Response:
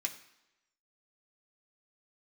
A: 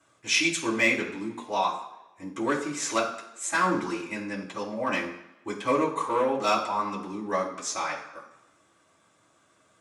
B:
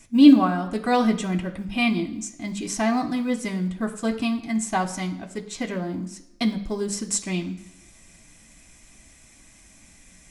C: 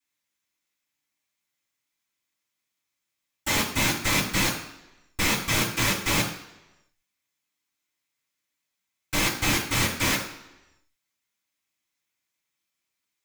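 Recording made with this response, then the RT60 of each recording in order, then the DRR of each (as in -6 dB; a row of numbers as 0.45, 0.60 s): B; 0.95, 0.95, 0.95 s; -6.5, 2.5, -12.0 dB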